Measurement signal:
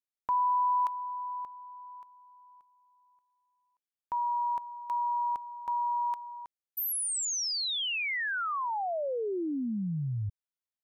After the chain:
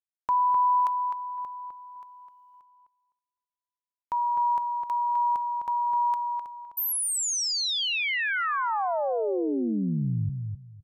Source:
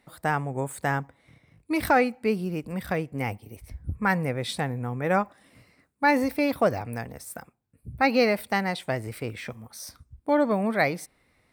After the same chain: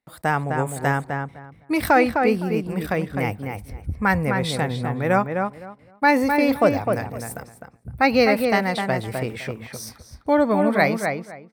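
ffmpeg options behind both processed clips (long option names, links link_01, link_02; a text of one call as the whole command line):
ffmpeg -i in.wav -filter_complex "[0:a]agate=range=-24dB:threshold=-57dB:ratio=16:release=61:detection=rms,asplit=2[link_01][link_02];[link_02]adelay=256,lowpass=frequency=2300:poles=1,volume=-4.5dB,asplit=2[link_03][link_04];[link_04]adelay=256,lowpass=frequency=2300:poles=1,volume=0.2,asplit=2[link_05][link_06];[link_06]adelay=256,lowpass=frequency=2300:poles=1,volume=0.2[link_07];[link_01][link_03][link_05][link_07]amix=inputs=4:normalize=0,volume=4dB" out.wav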